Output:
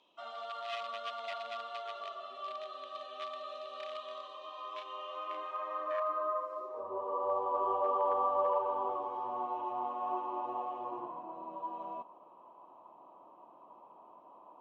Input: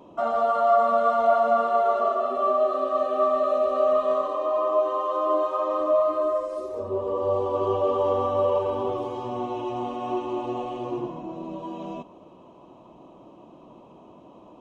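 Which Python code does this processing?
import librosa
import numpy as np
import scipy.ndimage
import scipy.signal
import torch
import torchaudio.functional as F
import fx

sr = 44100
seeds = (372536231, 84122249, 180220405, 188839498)

y = fx.clip_asym(x, sr, top_db=-15.5, bottom_db=-14.5)
y = fx.filter_sweep_bandpass(y, sr, from_hz=3500.0, to_hz=990.0, start_s=4.66, end_s=6.85, q=2.6)
y = fx.doubler(y, sr, ms=33.0, db=-4.5, at=(4.4, 5.51))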